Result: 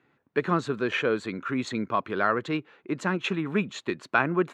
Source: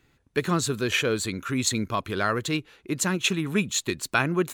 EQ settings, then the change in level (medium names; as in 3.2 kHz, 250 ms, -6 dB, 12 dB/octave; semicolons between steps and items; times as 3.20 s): Chebyshev high-pass 160 Hz, order 2; low-pass 1.4 kHz 12 dB/octave; tilt EQ +2.5 dB/octave; +4.0 dB